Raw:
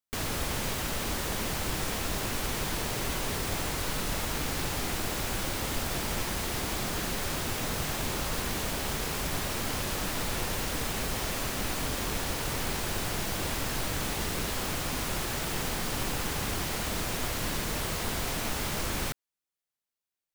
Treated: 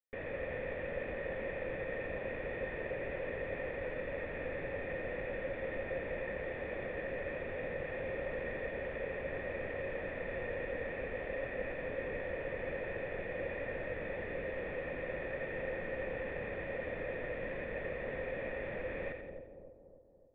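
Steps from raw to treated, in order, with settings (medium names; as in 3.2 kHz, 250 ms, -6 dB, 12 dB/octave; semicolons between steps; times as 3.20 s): cascade formant filter e; two-band feedback delay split 780 Hz, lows 287 ms, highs 86 ms, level -6.5 dB; trim +6 dB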